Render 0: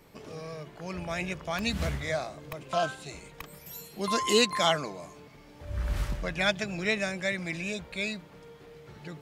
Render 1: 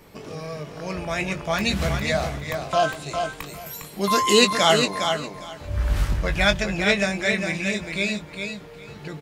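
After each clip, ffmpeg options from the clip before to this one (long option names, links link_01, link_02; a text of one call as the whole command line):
ffmpeg -i in.wav -filter_complex "[0:a]asplit=2[link_01][link_02];[link_02]adelay=20,volume=-9dB[link_03];[link_01][link_03]amix=inputs=2:normalize=0,asplit=2[link_04][link_05];[link_05]aecho=0:1:406|812|1218:0.501|0.0902|0.0162[link_06];[link_04][link_06]amix=inputs=2:normalize=0,volume=6.5dB" out.wav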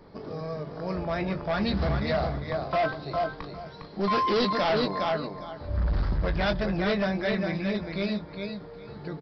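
ffmpeg -i in.wav -af "equalizer=frequency=2700:width_type=o:width=0.94:gain=-15,bandreject=frequency=50:width_type=h:width=6,bandreject=frequency=100:width_type=h:width=6,bandreject=frequency=150:width_type=h:width=6,aresample=11025,asoftclip=type=hard:threshold=-21.5dB,aresample=44100" out.wav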